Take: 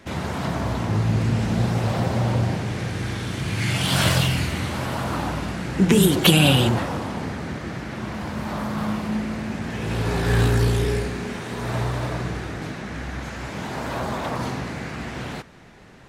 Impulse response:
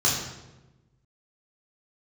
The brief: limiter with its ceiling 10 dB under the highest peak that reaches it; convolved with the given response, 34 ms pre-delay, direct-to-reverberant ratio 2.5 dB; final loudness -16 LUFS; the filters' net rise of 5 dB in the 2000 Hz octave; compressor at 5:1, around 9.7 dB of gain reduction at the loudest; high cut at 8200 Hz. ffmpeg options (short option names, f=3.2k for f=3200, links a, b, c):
-filter_complex "[0:a]lowpass=8.2k,equalizer=f=2k:t=o:g=6.5,acompressor=threshold=-21dB:ratio=5,alimiter=limit=-18.5dB:level=0:latency=1,asplit=2[a][b];[1:a]atrim=start_sample=2205,adelay=34[c];[b][c]afir=irnorm=-1:irlink=0,volume=-16dB[d];[a][d]amix=inputs=2:normalize=0,volume=8dB"